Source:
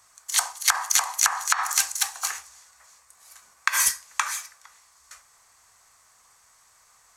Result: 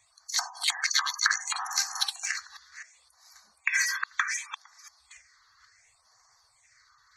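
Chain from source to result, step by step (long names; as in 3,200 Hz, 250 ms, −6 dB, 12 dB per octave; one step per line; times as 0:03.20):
delay that plays each chunk backwards 257 ms, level −6.5 dB
gate on every frequency bin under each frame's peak −15 dB strong
all-pass phaser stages 6, 0.68 Hz, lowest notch 620–2,800 Hz
in parallel at −6.5 dB: soft clipping −22 dBFS, distortion −9 dB
on the sum: graphic EQ with 10 bands 250 Hz +12 dB, 2,000 Hz +9 dB, 4,000 Hz +9 dB, 16,000 Hz −8 dB
level −8 dB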